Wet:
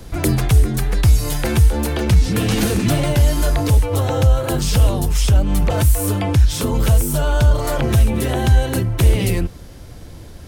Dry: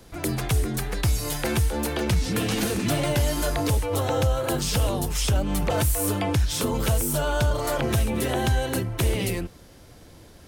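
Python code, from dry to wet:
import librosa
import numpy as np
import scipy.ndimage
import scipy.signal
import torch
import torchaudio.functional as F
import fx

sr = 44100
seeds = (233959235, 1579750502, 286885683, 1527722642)

y = fx.low_shelf(x, sr, hz=140.0, db=10.0)
y = fx.rider(y, sr, range_db=10, speed_s=0.5)
y = y * 10.0 ** (3.0 / 20.0)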